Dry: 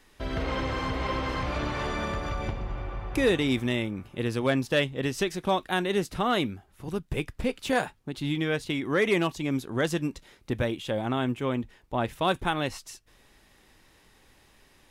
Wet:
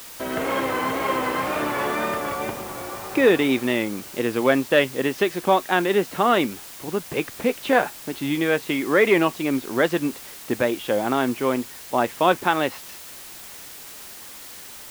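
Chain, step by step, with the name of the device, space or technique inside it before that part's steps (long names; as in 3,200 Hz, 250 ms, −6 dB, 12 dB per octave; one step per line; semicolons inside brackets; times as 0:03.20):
wax cylinder (band-pass filter 260–2,700 Hz; tape wow and flutter; white noise bed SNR 17 dB)
level +8 dB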